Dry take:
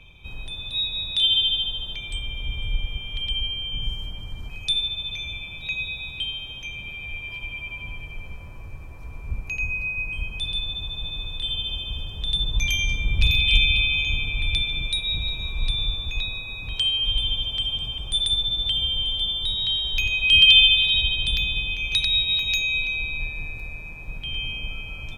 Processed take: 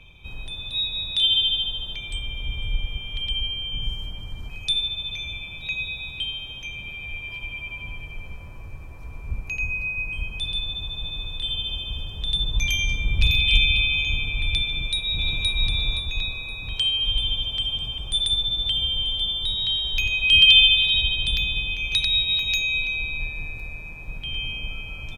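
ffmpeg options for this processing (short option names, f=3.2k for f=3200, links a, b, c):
-filter_complex "[0:a]asplit=2[a][b];[b]afade=t=in:st=14.66:d=0.01,afade=t=out:st=15.47:d=0.01,aecho=0:1:520|1040|1560|2080:0.944061|0.283218|0.0849655|0.0254896[c];[a][c]amix=inputs=2:normalize=0"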